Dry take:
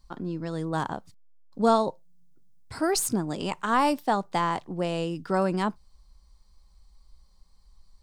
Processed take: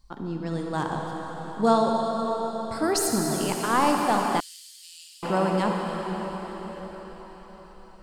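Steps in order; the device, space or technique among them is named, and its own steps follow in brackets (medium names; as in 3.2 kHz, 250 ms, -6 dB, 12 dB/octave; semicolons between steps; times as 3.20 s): cathedral (reverberation RT60 5.4 s, pre-delay 40 ms, DRR 0 dB); 4.40–5.23 s: inverse Chebyshev high-pass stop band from 940 Hz, stop band 70 dB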